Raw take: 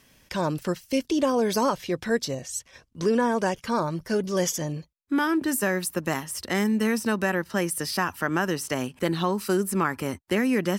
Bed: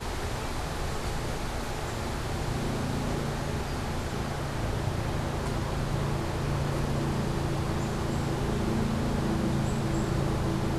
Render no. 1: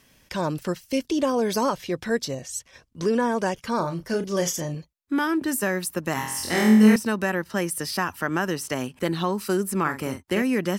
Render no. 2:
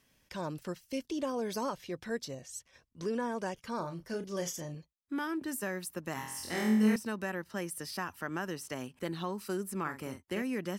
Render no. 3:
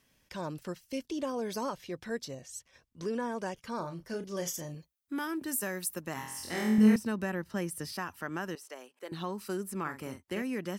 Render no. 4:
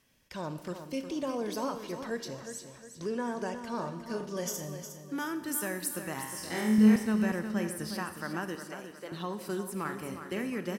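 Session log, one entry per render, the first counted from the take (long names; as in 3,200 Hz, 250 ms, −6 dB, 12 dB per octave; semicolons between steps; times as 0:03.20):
0:03.76–0:04.75: double-tracking delay 35 ms −9 dB; 0:06.14–0:06.96: flutter between parallel walls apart 4 metres, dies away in 0.78 s; 0:09.81–0:10.42: double-tracking delay 45 ms −8 dB
level −11.5 dB
0:04.46–0:06.02: high-shelf EQ 11,000 Hz → 5,700 Hz +10.5 dB; 0:06.78–0:07.93: low-shelf EQ 260 Hz +8.5 dB; 0:08.55–0:09.12: four-pole ladder high-pass 340 Hz, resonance 25%
repeating echo 360 ms, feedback 40%, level −9.5 dB; four-comb reverb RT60 1.2 s, combs from 26 ms, DRR 10 dB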